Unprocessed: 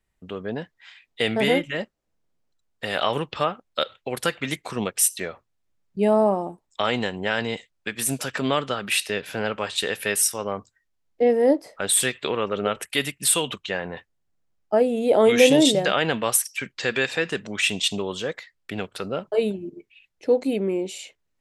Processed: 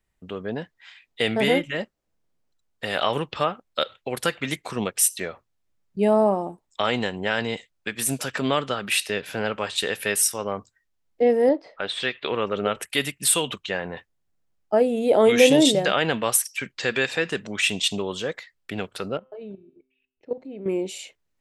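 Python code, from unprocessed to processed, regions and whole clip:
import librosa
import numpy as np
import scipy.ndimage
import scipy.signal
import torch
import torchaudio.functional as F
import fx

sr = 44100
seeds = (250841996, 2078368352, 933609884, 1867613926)

y = fx.chain(x, sr, fx.lowpass(hz=4300.0, slope=24),
    fx.peak_eq(hz=98.0, db=-7.5, octaves=3.0), at=(11.49, 12.32))
y = fx.chain(y, sr, fx.level_steps(step_db=15),
    fx.spacing_loss(db_at_10k=31),
    fx.comb_fb(f0_hz=130.0, decay_s=0.85, harmonics='all', damping=0.0, mix_pct=50), at=(19.17, 20.66))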